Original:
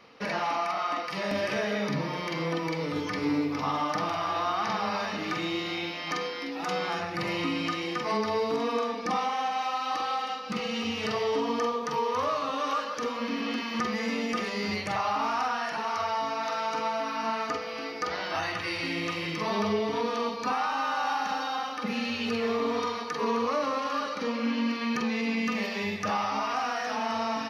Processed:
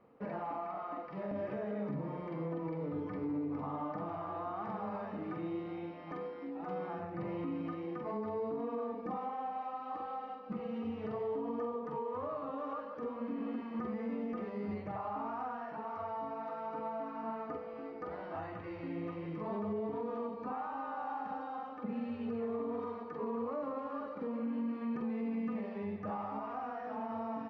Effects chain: Bessel low-pass 660 Hz, order 2; limiter -25 dBFS, peak gain reduction 5.5 dB; gain -5 dB

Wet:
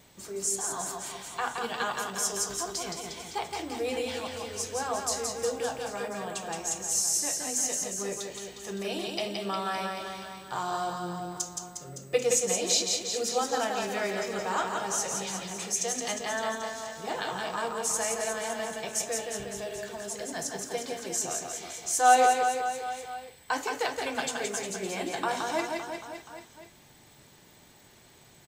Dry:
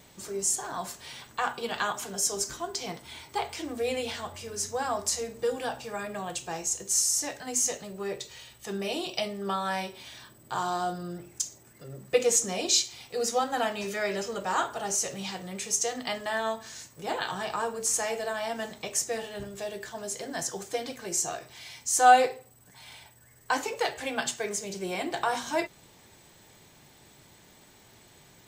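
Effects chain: reverse bouncing-ball echo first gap 0.17 s, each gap 1.1×, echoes 5; gain -2.5 dB

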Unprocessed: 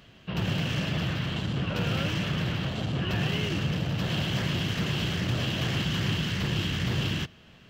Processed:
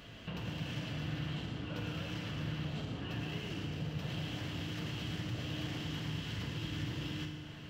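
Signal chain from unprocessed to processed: compressor 6:1, threshold -42 dBFS, peak gain reduction 17 dB; FDN reverb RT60 2 s, low-frequency decay 1.2×, high-frequency decay 0.75×, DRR 1.5 dB; gain +1 dB

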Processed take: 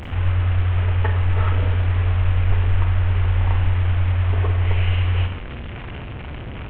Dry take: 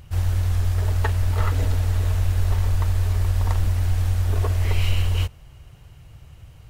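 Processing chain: delta modulation 16 kbps, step -26 dBFS; Schroeder reverb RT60 0.56 s, combs from 30 ms, DRR 6 dB

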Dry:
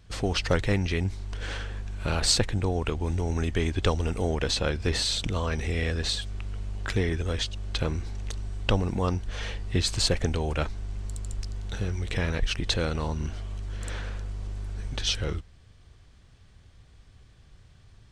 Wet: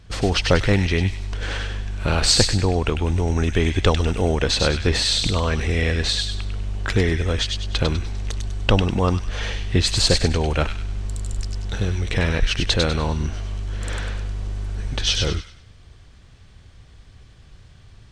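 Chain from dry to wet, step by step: high shelf 9400 Hz -7 dB; on a send: thin delay 99 ms, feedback 36%, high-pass 2100 Hz, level -3.5 dB; on the sum: gain +7 dB

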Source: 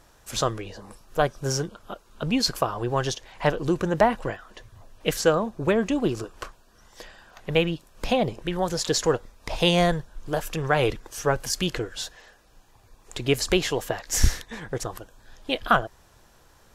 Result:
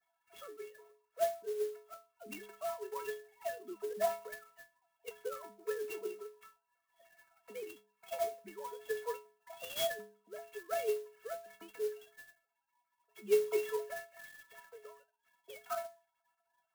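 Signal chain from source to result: sine-wave speech; metallic resonator 200 Hz, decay 0.49 s, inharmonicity 0.03; clock jitter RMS 0.041 ms

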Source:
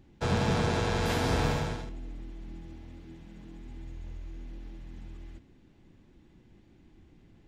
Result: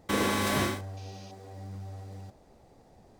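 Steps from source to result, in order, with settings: spectral gain 2.27–3.07, 970–2900 Hz +12 dB; speed mistake 33 rpm record played at 78 rpm

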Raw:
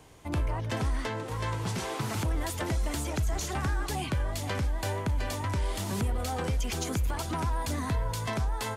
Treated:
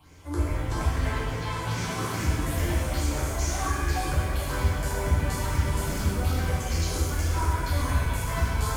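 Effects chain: phaser stages 6, 2.4 Hz, lowest notch 160–1100 Hz; notches 50/100/150/200 Hz; shimmer reverb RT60 1.5 s, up +7 st, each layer -8 dB, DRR -8 dB; gain -3 dB

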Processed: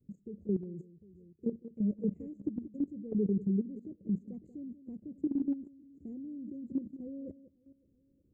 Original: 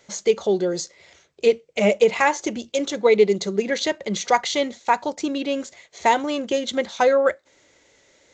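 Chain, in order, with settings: inverse Chebyshev band-stop 830–5900 Hz, stop band 60 dB; tone controls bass +3 dB, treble -4 dB; on a send: echo with dull and thin repeats by turns 0.184 s, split 960 Hz, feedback 56%, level -14 dB; on the sum: level quantiser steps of 14 dB

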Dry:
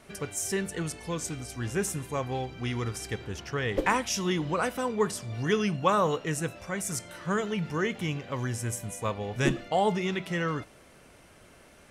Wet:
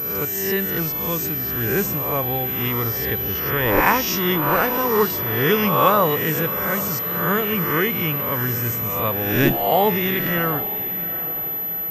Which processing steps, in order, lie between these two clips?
spectral swells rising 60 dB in 0.92 s; diffused feedback echo 0.805 s, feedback 47%, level -13.5 dB; pulse-width modulation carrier 12000 Hz; gain +5.5 dB

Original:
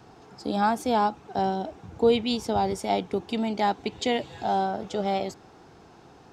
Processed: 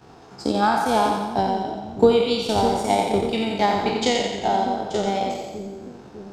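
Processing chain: spectral trails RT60 1.27 s; transient shaper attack +8 dB, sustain -11 dB; split-band echo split 400 Hz, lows 0.601 s, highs 88 ms, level -5 dB

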